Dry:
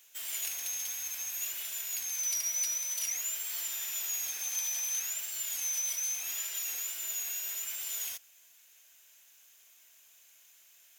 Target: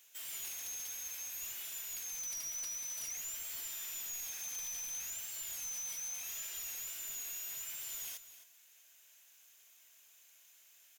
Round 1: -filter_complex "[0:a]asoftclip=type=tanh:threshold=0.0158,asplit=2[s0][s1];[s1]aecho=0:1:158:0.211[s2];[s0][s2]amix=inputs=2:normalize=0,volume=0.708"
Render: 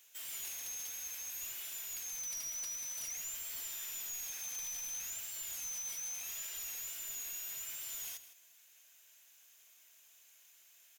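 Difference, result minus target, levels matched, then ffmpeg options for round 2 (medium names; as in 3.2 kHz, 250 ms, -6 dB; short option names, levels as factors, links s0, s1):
echo 104 ms early
-filter_complex "[0:a]asoftclip=type=tanh:threshold=0.0158,asplit=2[s0][s1];[s1]aecho=0:1:262:0.211[s2];[s0][s2]amix=inputs=2:normalize=0,volume=0.708"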